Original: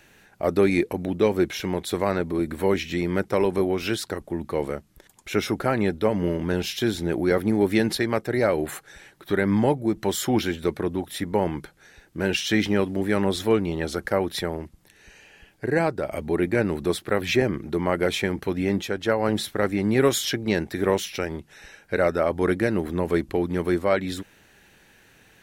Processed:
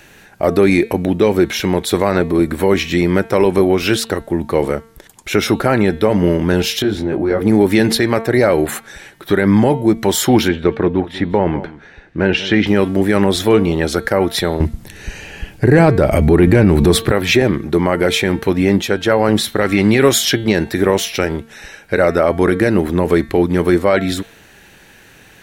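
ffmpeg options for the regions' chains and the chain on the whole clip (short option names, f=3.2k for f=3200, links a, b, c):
-filter_complex "[0:a]asettb=1/sr,asplit=3[a][b][c];[a]atrim=end=6.824[d];[b]atrim=start=6.82:end=7.42,asetpts=PTS-STARTPTS,afade=t=in:d=0.004:c=qsin,afade=t=out:st=0.596:d=0.004:c=qsin,lowpass=f=1.6k:p=1,acompressor=threshold=-29dB:ratio=2:attack=3.2:release=140:knee=1:detection=peak,asplit=2[e][f];[f]adelay=20,volume=-3dB[g];[e][g]amix=inputs=2:normalize=0,atrim=end_sample=26460[h];[c]atrim=start=7.416[i];[d][h]acrossfade=d=0.004:c1=hsin:c2=qsin[j];[j][i]acrossfade=d=0.004:c1=qsin:c2=hsin,asettb=1/sr,asplit=3[k][l][m];[k]atrim=end=10.484[n];[l]atrim=start=10.48:end=12.67,asetpts=PTS-STARTPTS,afade=t=in:d=0.004:c=qsin,afade=t=out:st=2.186:d=0.004:c=qsin,lowpass=2.8k,aecho=1:1:191:0.141,atrim=end_sample=96579[o];[m]atrim=start=12.666[p];[n][o]acrossfade=d=0.004:c1=hsin:c2=qsin[q];[q][p]acrossfade=d=0.004:c1=qsin:c2=hsin,asettb=1/sr,asplit=3[r][s][t];[r]atrim=end=14.604[u];[s]atrim=start=14.6:end=17.12,asetpts=PTS-STARTPTS,afade=t=in:d=0.004:c=qsin,afade=t=out:st=2.516:d=0.004:c=qsin,lowshelf=f=210:g=11.5,acontrast=50[v];[t]atrim=start=17.116[w];[u][v]acrossfade=d=0.004:c1=hsin:c2=qsin[x];[x][w]acrossfade=d=0.004:c1=qsin:c2=hsin,asettb=1/sr,asplit=3[y][z][aa];[y]atrim=end=19.614[ab];[z]atrim=start=19.61:end=20.03,asetpts=PTS-STARTPTS,afade=t=in:d=0.004:c=qsin,afade=t=out:st=0.416:d=0.004:c=qsin,acompressor=mode=upward:threshold=-23dB:ratio=2.5:attack=3.2:release=140:knee=2.83:detection=peak,equalizer=f=3.1k:w=0.73:g=7.5[ac];[aa]atrim=start=20.026[ad];[ab][ac]acrossfade=d=0.004:c1=hsin:c2=qsin[ae];[ae][ad]acrossfade=d=0.004:c1=qsin:c2=hsin,bandreject=f=226.6:t=h:w=4,bandreject=f=453.2:t=h:w=4,bandreject=f=679.8:t=h:w=4,bandreject=f=906.4:t=h:w=4,bandreject=f=1.133k:t=h:w=4,bandreject=f=1.3596k:t=h:w=4,bandreject=f=1.5862k:t=h:w=4,bandreject=f=1.8128k:t=h:w=4,bandreject=f=2.0394k:t=h:w=4,bandreject=f=2.266k:t=h:w=4,bandreject=f=2.4926k:t=h:w=4,bandreject=f=2.7192k:t=h:w=4,bandreject=f=2.9458k:t=h:w=4,bandreject=f=3.1724k:t=h:w=4,bandreject=f=3.399k:t=h:w=4,bandreject=f=3.6256k:t=h:w=4,bandreject=f=3.8522k:t=h:w=4,bandreject=f=4.0788k:t=h:w=4,bandreject=f=4.3054k:t=h:w=4,alimiter=level_in=12dB:limit=-1dB:release=50:level=0:latency=1,volume=-1dB"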